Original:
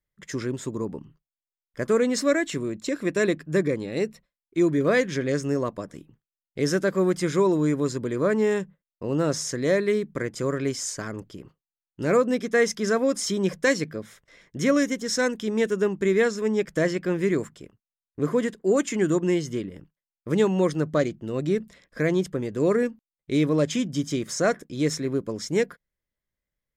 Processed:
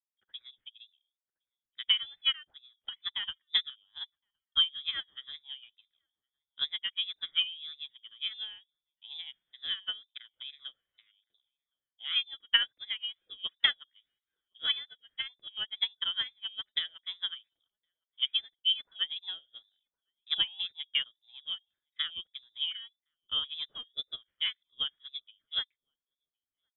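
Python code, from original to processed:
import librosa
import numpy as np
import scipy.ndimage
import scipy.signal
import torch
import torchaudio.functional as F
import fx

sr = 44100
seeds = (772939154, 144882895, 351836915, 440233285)

y = fx.transient(x, sr, attack_db=8, sustain_db=2)
y = fx.freq_invert(y, sr, carrier_hz=3600)
y = fx.wow_flutter(y, sr, seeds[0], rate_hz=2.1, depth_cents=89.0)
y = fx.echo_filtered(y, sr, ms=1064, feedback_pct=57, hz=890.0, wet_db=-18.0)
y = fx.upward_expand(y, sr, threshold_db=-32.0, expansion=2.5)
y = F.gain(torch.from_numpy(y), -7.5).numpy()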